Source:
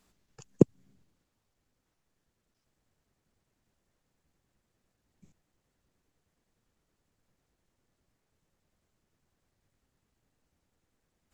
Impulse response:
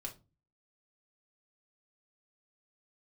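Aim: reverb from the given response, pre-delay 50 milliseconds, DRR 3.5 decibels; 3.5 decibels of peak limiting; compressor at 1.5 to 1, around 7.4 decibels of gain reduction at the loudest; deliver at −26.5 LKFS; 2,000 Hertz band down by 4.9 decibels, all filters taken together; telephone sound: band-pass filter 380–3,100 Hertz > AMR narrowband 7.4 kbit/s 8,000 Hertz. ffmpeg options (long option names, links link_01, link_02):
-filter_complex "[0:a]equalizer=frequency=2000:width_type=o:gain=-5.5,acompressor=threshold=-36dB:ratio=1.5,alimiter=limit=-13.5dB:level=0:latency=1,asplit=2[link_01][link_02];[1:a]atrim=start_sample=2205,adelay=50[link_03];[link_02][link_03]afir=irnorm=-1:irlink=0,volume=-1dB[link_04];[link_01][link_04]amix=inputs=2:normalize=0,highpass=380,lowpass=3100,volume=14.5dB" -ar 8000 -c:a libopencore_amrnb -b:a 7400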